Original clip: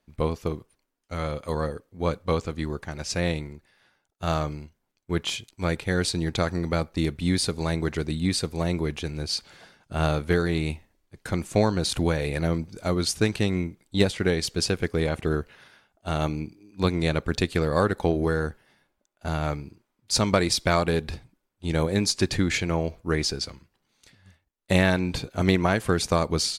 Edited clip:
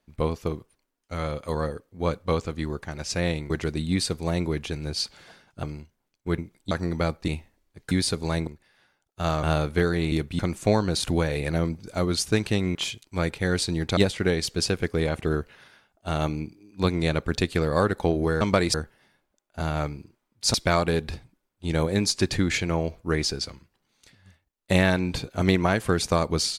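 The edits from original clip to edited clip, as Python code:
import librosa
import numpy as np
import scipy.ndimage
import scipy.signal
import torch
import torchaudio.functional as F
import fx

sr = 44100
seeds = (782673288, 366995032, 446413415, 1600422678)

y = fx.edit(x, sr, fx.swap(start_s=3.5, length_s=0.96, other_s=7.83, other_length_s=2.13),
    fx.swap(start_s=5.21, length_s=1.22, other_s=13.64, other_length_s=0.33),
    fx.swap(start_s=7.0, length_s=0.27, other_s=10.65, other_length_s=0.63),
    fx.move(start_s=20.21, length_s=0.33, to_s=18.41), tone=tone)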